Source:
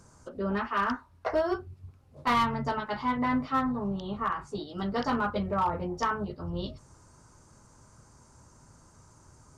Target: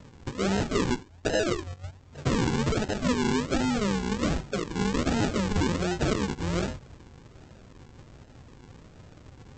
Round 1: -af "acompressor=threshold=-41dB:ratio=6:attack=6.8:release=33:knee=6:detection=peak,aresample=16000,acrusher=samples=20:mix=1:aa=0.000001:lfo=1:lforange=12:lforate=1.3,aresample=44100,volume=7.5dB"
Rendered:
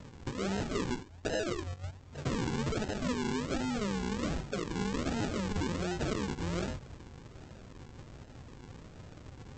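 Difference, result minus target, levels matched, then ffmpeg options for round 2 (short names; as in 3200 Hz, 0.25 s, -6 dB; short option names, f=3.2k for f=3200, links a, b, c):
compressor: peak gain reduction +8 dB
-af "acompressor=threshold=-31.5dB:ratio=6:attack=6.8:release=33:knee=6:detection=peak,aresample=16000,acrusher=samples=20:mix=1:aa=0.000001:lfo=1:lforange=12:lforate=1.3,aresample=44100,volume=7.5dB"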